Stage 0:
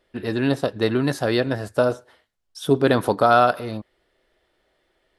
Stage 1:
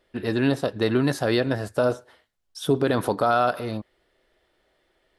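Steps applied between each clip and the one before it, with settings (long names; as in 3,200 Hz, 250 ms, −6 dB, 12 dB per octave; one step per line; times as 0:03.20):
brickwall limiter −10.5 dBFS, peak gain reduction 6.5 dB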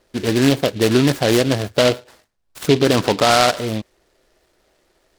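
high-frequency loss of the air 110 metres
short delay modulated by noise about 2,900 Hz, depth 0.097 ms
level +7 dB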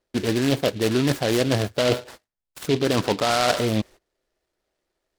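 noise gate −43 dBFS, range −22 dB
reversed playback
downward compressor 6 to 1, threshold −23 dBFS, peak gain reduction 13.5 dB
reversed playback
level +5 dB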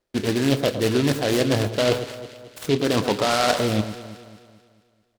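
double-tracking delay 29 ms −14 dB
on a send: delay that swaps between a low-pass and a high-pass 110 ms, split 1,400 Hz, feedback 68%, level −10 dB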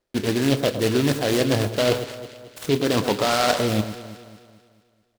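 one scale factor per block 5 bits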